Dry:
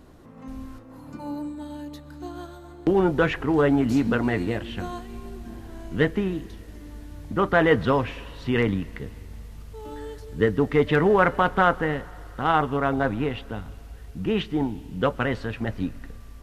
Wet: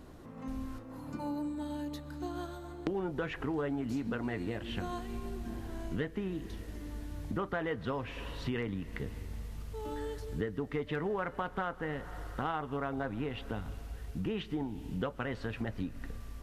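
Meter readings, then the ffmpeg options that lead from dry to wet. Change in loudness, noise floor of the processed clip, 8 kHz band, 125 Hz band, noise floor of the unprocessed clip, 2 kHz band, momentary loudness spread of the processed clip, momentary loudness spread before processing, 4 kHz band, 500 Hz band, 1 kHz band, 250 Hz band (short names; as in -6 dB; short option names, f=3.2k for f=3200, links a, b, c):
-14.0 dB, -48 dBFS, n/a, -10.5 dB, -44 dBFS, -14.0 dB, 9 LU, 21 LU, -10.5 dB, -13.5 dB, -14.0 dB, -11.0 dB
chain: -af "acompressor=threshold=-31dB:ratio=6,volume=-1.5dB"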